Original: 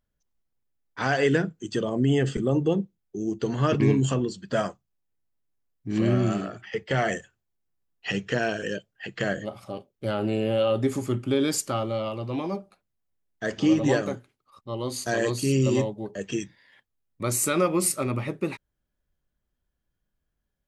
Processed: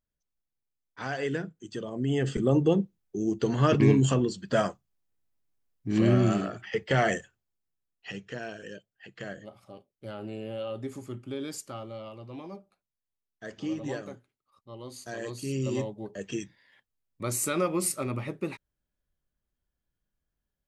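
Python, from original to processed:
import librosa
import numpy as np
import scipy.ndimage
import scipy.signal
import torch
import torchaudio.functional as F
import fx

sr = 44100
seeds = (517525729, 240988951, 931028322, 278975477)

y = fx.gain(x, sr, db=fx.line((1.91, -9.0), (2.48, 0.5), (7.08, 0.5), (8.25, -12.0), (15.17, -12.0), (16.05, -4.5)))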